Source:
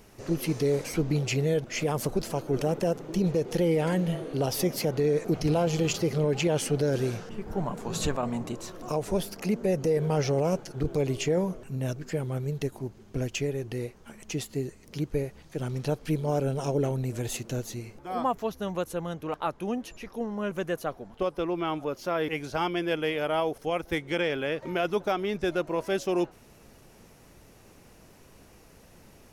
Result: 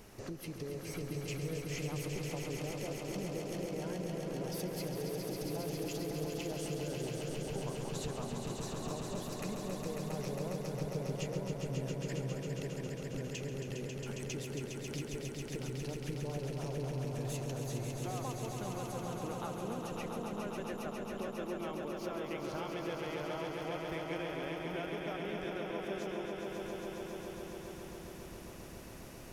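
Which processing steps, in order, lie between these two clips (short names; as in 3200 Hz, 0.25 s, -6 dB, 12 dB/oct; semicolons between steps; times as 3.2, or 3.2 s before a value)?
compressor, threshold -41 dBFS, peak gain reduction 18 dB; swelling echo 0.136 s, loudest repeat 5, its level -6 dB; gain -1 dB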